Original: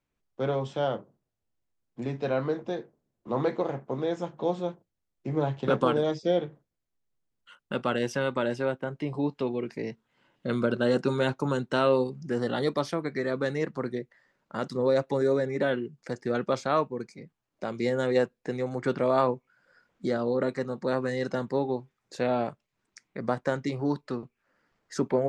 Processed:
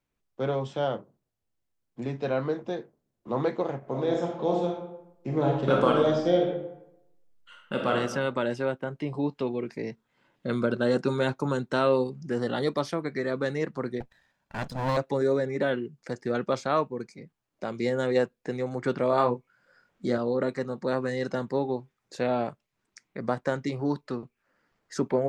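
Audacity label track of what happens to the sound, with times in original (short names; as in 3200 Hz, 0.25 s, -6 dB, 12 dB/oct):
3.780000	7.950000	reverb throw, RT60 0.84 s, DRR 0 dB
9.560000	11.940000	notch 2900 Hz, Q 14
14.000000	14.970000	minimum comb delay 1.2 ms
19.100000	20.180000	doubler 25 ms -6 dB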